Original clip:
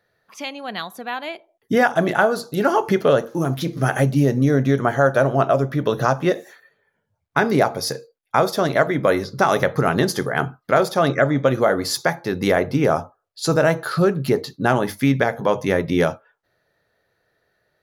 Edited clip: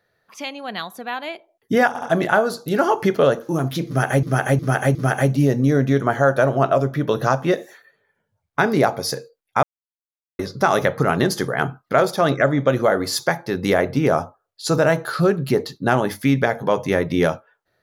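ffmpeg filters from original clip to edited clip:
-filter_complex "[0:a]asplit=8[a][b][c][d][e][f][g][h];[a]atrim=end=1.952[i];[b]atrim=start=1.878:end=1.952[j];[c]atrim=start=1.878:end=4.092[k];[d]atrim=start=3.728:end=4.092[l];[e]atrim=start=3.728:end=4.092[m];[f]atrim=start=3.728:end=8.41,asetpts=PTS-STARTPTS,afade=t=out:st=4.678:d=0.004:c=hsin[n];[g]atrim=start=8.41:end=9.17,asetpts=PTS-STARTPTS,volume=0[o];[h]atrim=start=9.17,asetpts=PTS-STARTPTS,afade=t=in:d=0.004:c=hsin[p];[i][j]acrossfade=d=0.004:c1=hsin:c2=hsin[q];[q][k]acrossfade=d=0.004:c1=hsin:c2=hsin[r];[r][l]acrossfade=d=0.004:c1=hsin:c2=hsin[s];[s][m]acrossfade=d=0.004:c1=hsin:c2=hsin[t];[n][o][p]concat=n=3:v=0:a=1[u];[t][u]acrossfade=d=0.004:c1=hsin:c2=hsin"

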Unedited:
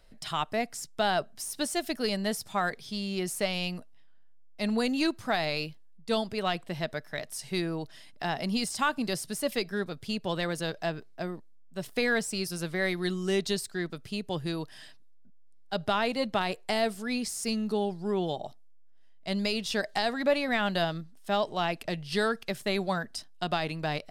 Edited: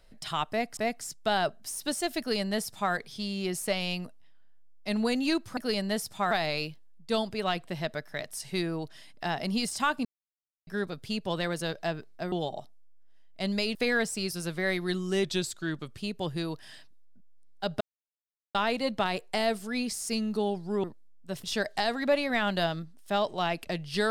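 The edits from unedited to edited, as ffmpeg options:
-filter_complex "[0:a]asplit=13[a][b][c][d][e][f][g][h][i][j][k][l][m];[a]atrim=end=0.772[n];[b]atrim=start=0.498:end=5.302[o];[c]atrim=start=1.918:end=2.662[p];[d]atrim=start=5.298:end=9.04,asetpts=PTS-STARTPTS,afade=t=out:st=3.738:d=0.004:c=hsin[q];[e]atrim=start=9.04:end=9.66,asetpts=PTS-STARTPTS,volume=0[r];[f]atrim=start=9.66:end=11.312,asetpts=PTS-STARTPTS,afade=t=in:d=0.004:c=hsin[s];[g]atrim=start=18.188:end=19.622[t];[h]atrim=start=11.908:end=13.404[u];[i]atrim=start=13.4:end=14.07,asetpts=PTS-STARTPTS,asetrate=40131,aresample=44100,atrim=end_sample=32469,asetpts=PTS-STARTPTS[v];[j]atrim=start=14.066:end=15.9,asetpts=PTS-STARTPTS,afade=t=out:st=1.83:d=0.004:c=hsin,apad=pad_dur=0.74[w];[k]atrim=start=15.9:end=18.192,asetpts=PTS-STARTPTS,afade=t=in:d=0.004:c=hsin[x];[l]atrim=start=11.308:end=11.912[y];[m]atrim=start=19.618[z];[n][o]acrossfade=d=0.004:c1=hsin:c2=hsin[aa];[aa][p]acrossfade=d=0.004:c1=hsin:c2=hsin[ab];[q][r][s]concat=n=3:v=0:a=1[ac];[ab][ac]acrossfade=d=0.004:c1=hsin:c2=hsin[ad];[ad][t]acrossfade=d=0.004:c1=hsin:c2=hsin[ae];[ae][u]acrossfade=d=0.004:c1=hsin:c2=hsin[af];[af][v]acrossfade=d=0.004:c1=hsin:c2=hsin[ag];[w][x]concat=n=2:v=0:a=1[ah];[ag][ah]acrossfade=d=0.004:c1=hsin:c2=hsin[ai];[ai][y]acrossfade=d=0.004:c1=hsin:c2=hsin[aj];[aj][z]acrossfade=d=0.004:c1=hsin:c2=hsin"

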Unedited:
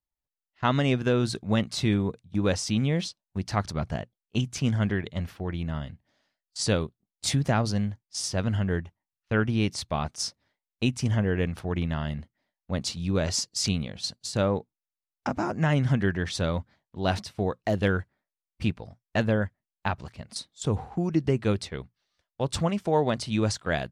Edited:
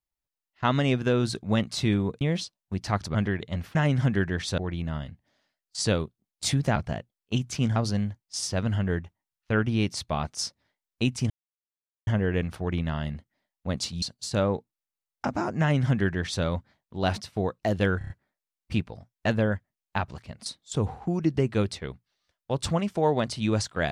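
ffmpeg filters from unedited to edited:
-filter_complex "[0:a]asplit=13[a][b][c][d][e][f][g][h][i][j][k][l][m];[a]atrim=end=2.212[n];[b]atrim=start=2.848:end=3.792[o];[c]atrim=start=4.788:end=5.392[p];[d]atrim=start=15.618:end=16.452[q];[e]atrim=start=5.388:end=7.572[r];[f]atrim=start=3.788:end=4.792[s];[g]atrim=start=7.568:end=11.11,asetpts=PTS-STARTPTS,afade=t=out:st=3.538:d=0.004:c=hsin,apad=pad_dur=0.77[t];[h]atrim=start=11.11:end=13.062,asetpts=PTS-STARTPTS,afade=t=in:d=0.004:c=hsin[u];[i]atrim=start=14.038:end=18.032[v];[j]atrim=start=17.998:end=18.032[w];[k]atrim=start=17.998:end=18.032[x];[l]atrim=start=17.998:end=18.032[y];[m]atrim=start=17.998[z];[n][o]acrossfade=d=0.004:c1=hsin:c2=hsin[aa];[aa][p]acrossfade=d=0.004:c1=hsin:c2=hsin[ab];[ab][q]acrossfade=d=0.004:c1=hsin:c2=hsin[ac];[ac][r]acrossfade=d=0.004:c1=hsin:c2=hsin[ad];[ad][s]acrossfade=d=0.004:c1=hsin:c2=hsin[ae];[t][u]concat=n=2:v=0:a=1[af];[ae][af]acrossfade=d=0.004:c1=hsin:c2=hsin[ag];[ag][v]acrossfade=d=0.004:c1=hsin:c2=hsin[ah];[ah][w]acrossfade=d=0.004:c1=hsin:c2=hsin[ai];[ai][x]acrossfade=d=0.004:c1=hsin:c2=hsin[aj];[aj][y]acrossfade=d=0.004:c1=hsin:c2=hsin[ak];[ak][z]acrossfade=d=0.004:c1=hsin:c2=hsin"

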